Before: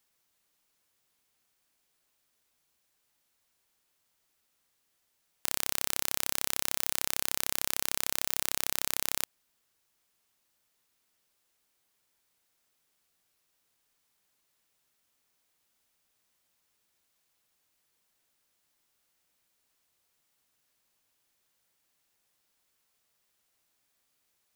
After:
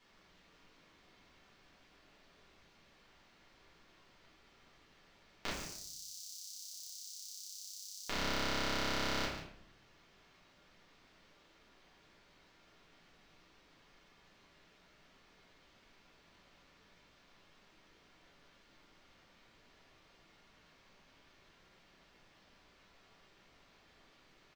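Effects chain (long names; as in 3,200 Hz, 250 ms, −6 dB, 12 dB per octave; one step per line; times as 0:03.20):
0:05.49–0:08.07: inverse Chebyshev high-pass filter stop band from 1,900 Hz, stop band 60 dB
brickwall limiter −14.5 dBFS, peak gain reduction 12.5 dB
high-frequency loss of the air 210 metres
single-tap delay 141 ms −11 dB
rectangular room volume 100 cubic metres, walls mixed, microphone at 1.8 metres
level +10.5 dB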